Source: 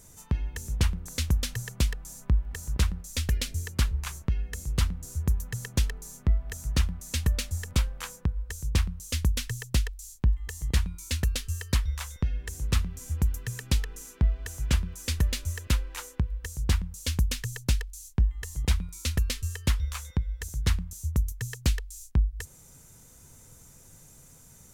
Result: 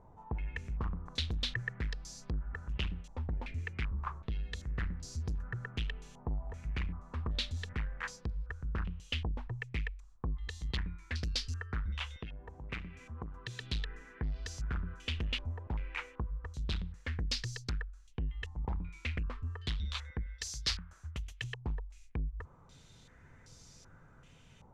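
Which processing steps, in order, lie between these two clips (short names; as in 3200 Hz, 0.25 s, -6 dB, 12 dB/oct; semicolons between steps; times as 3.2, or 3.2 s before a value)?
20.26–21.44 tilt shelf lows -9 dB, about 1100 Hz; soft clip -28 dBFS, distortion -6 dB; 12.18–13.6 low shelf 120 Hz -11 dB; stepped low-pass 2.6 Hz 890–4800 Hz; gain -3.5 dB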